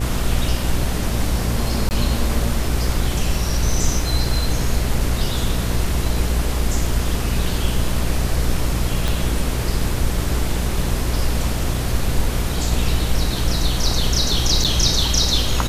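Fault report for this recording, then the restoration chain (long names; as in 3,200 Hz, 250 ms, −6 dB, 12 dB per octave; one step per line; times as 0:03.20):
mains buzz 60 Hz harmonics 12 −23 dBFS
0:01.89–0:01.91: drop-out 19 ms
0:09.08: click
0:14.64–0:14.65: drop-out 6.9 ms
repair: click removal
hum removal 60 Hz, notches 12
repair the gap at 0:01.89, 19 ms
repair the gap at 0:14.64, 6.9 ms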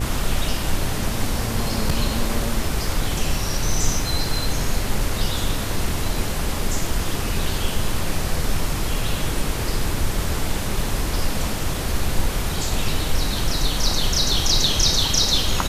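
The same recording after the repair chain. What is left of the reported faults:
0:09.08: click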